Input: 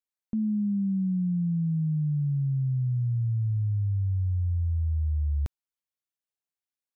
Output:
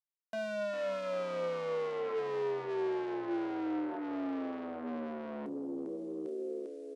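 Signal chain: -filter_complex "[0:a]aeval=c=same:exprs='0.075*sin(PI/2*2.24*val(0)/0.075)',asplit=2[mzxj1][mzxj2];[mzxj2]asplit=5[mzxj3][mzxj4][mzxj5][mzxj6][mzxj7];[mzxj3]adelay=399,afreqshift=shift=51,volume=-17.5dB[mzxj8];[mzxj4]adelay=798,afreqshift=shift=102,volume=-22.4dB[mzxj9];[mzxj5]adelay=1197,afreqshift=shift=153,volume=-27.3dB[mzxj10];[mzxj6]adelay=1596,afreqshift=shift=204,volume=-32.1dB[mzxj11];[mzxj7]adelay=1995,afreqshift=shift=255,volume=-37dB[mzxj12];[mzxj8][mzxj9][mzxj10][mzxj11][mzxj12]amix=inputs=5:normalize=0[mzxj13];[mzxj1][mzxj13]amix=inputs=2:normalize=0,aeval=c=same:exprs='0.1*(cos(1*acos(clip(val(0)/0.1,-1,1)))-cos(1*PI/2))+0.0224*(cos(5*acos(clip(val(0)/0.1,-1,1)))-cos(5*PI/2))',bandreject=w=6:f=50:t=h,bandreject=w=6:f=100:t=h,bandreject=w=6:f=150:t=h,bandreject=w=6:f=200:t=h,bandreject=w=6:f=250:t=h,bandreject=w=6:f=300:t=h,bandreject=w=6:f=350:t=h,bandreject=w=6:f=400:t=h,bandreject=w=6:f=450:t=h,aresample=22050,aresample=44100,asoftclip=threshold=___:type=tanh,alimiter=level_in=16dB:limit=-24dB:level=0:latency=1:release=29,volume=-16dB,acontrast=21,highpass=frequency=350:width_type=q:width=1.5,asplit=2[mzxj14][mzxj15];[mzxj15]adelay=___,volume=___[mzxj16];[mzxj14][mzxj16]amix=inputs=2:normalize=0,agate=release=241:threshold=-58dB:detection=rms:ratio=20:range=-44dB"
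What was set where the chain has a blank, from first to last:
-31.5dB, 29, -11.5dB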